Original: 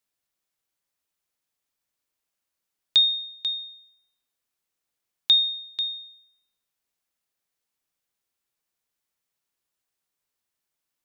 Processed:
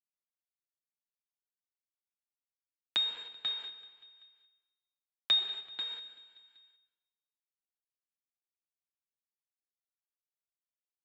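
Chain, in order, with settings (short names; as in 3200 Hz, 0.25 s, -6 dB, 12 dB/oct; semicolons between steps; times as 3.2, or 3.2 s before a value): minimum comb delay 6.2 ms; 3.37–5.39 comb 1.7 ms, depth 86%; in parallel at +1 dB: compressor 5:1, threshold -31 dBFS, peak gain reduction 17 dB; on the sum: frequency shift +14 Hz; vibrato 0.38 Hz 6.2 cents; bit-crush 5-bit; speaker cabinet 430–3300 Hz, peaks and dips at 520 Hz -8 dB, 940 Hz +3 dB, 1600 Hz +8 dB, 2300 Hz +3 dB; feedback echo 0.192 s, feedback 53%, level -19.5 dB; on a send at -13 dB: reverb RT60 1.2 s, pre-delay 0.118 s; on the sum: mismatched tape noise reduction encoder only; gain -7.5 dB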